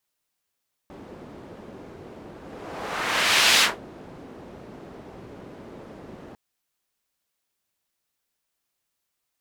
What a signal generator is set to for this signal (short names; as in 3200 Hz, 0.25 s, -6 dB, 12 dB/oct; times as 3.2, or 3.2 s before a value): whoosh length 5.45 s, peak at 2.71, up 1.33 s, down 0.19 s, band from 340 Hz, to 3300 Hz, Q 0.88, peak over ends 25.5 dB